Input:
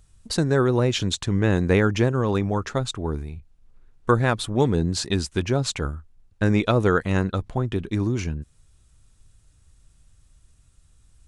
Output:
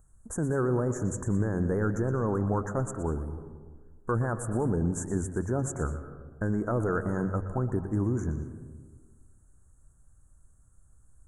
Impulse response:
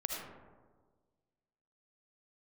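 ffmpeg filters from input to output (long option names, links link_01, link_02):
-filter_complex "[0:a]bandreject=frequency=46.98:width_type=h:width=4,bandreject=frequency=93.96:width_type=h:width=4,bandreject=frequency=140.94:width_type=h:width=4,alimiter=limit=-15dB:level=0:latency=1:release=12,asuperstop=centerf=3400:order=12:qfactor=0.67,asplit=2[link_01][link_02];[1:a]atrim=start_sample=2205,adelay=120[link_03];[link_02][link_03]afir=irnorm=-1:irlink=0,volume=-12.5dB[link_04];[link_01][link_04]amix=inputs=2:normalize=0,volume=-3.5dB"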